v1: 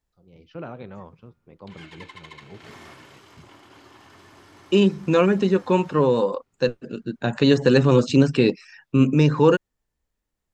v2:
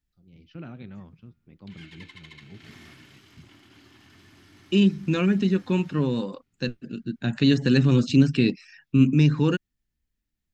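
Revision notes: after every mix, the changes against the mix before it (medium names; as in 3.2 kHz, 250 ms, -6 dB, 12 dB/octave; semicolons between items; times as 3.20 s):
master: add graphic EQ 250/500/1000/8000 Hz +3/-12/-11/-5 dB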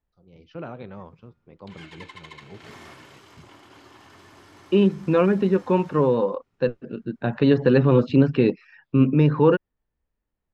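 second voice: add distance through air 370 m; master: add graphic EQ 250/500/1000/8000 Hz -3/+12/+11/+5 dB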